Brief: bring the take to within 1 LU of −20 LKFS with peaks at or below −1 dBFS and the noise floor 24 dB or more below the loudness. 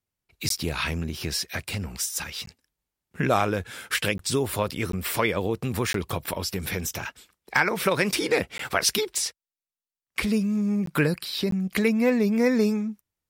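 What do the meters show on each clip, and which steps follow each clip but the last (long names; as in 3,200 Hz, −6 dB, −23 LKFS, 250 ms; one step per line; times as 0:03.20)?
number of dropouts 8; longest dropout 13 ms; integrated loudness −26.0 LKFS; sample peak −7.5 dBFS; target loudness −20.0 LKFS
→ repair the gap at 0:00.49/0:02.46/0:04.18/0:04.92/0:05.93/0:08.58/0:10.86/0:11.51, 13 ms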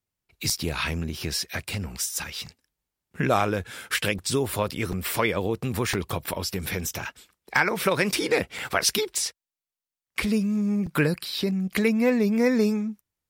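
number of dropouts 0; integrated loudness −26.0 LKFS; sample peak −7.5 dBFS; target loudness −20.0 LKFS
→ level +6 dB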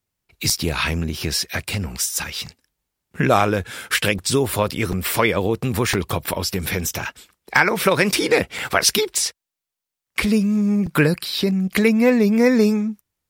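integrated loudness −20.0 LKFS; sample peak −1.5 dBFS; background noise floor −85 dBFS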